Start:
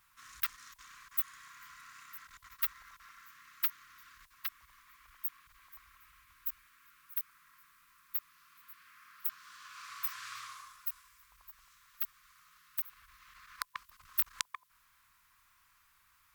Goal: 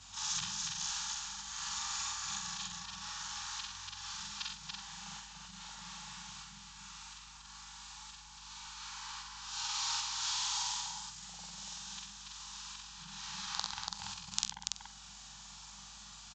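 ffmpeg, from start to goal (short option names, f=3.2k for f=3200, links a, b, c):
-filter_complex "[0:a]afftfilt=real='re':imag='-im':win_size=4096:overlap=0.75,acrossover=split=330[a][b];[b]acompressor=threshold=-54dB:ratio=6[c];[a][c]amix=inputs=2:normalize=0,afreqshift=-220,bandreject=f=2.1k:w=14,aresample=16000,aresample=44100,aeval=exprs='val(0)+0.000126*(sin(2*PI*50*n/s)+sin(2*PI*2*50*n/s)/2+sin(2*PI*3*50*n/s)/3+sin(2*PI*4*50*n/s)/4+sin(2*PI*5*50*n/s)/5)':c=same,equalizer=f=95:t=o:w=0.67:g=8,aecho=1:1:64.14|285.7:0.447|0.708,aexciter=amount=5:drive=4.8:freq=2.9k,volume=13dB"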